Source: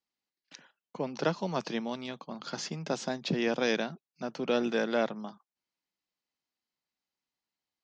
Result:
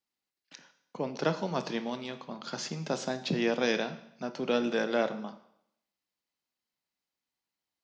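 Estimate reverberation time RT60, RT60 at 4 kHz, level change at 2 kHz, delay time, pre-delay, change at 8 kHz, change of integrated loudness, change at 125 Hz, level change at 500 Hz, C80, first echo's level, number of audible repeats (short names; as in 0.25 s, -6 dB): 0.75 s, 0.75 s, +0.5 dB, none, 22 ms, +0.5 dB, +0.5 dB, +0.5 dB, +0.5 dB, 15.5 dB, none, none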